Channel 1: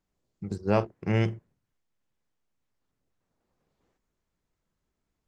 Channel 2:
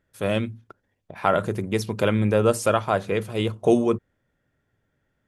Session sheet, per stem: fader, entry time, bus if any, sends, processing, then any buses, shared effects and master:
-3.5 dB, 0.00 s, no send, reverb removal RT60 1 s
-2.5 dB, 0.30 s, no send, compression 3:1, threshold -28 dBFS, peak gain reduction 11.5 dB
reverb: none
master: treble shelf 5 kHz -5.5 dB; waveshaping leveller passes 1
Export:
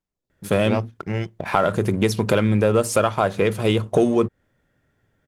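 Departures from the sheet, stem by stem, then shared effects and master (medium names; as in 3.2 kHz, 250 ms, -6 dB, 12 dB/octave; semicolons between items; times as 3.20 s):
stem 2 -2.5 dB -> +7.5 dB; master: missing treble shelf 5 kHz -5.5 dB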